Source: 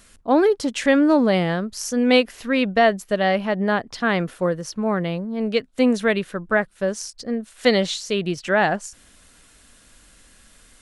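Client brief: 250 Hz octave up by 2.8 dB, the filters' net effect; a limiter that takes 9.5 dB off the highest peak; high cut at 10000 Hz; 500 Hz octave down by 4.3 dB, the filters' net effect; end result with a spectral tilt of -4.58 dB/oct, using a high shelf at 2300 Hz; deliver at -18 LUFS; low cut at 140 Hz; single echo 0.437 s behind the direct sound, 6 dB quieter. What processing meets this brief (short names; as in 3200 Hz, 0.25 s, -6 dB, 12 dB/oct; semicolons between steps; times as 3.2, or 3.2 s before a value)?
HPF 140 Hz; LPF 10000 Hz; bell 250 Hz +5.5 dB; bell 500 Hz -7 dB; high shelf 2300 Hz +3.5 dB; limiter -14 dBFS; echo 0.437 s -6 dB; gain +5 dB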